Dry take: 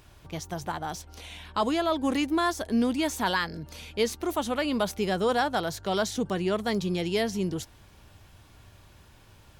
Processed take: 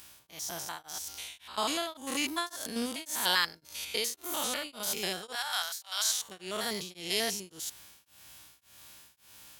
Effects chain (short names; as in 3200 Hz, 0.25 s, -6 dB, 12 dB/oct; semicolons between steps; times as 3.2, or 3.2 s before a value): stepped spectrum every 0.1 s; 5.35–6.29 HPF 850 Hz 24 dB/oct; hum 60 Hz, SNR 25 dB; tilt +4.5 dB/oct; beating tremolo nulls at 1.8 Hz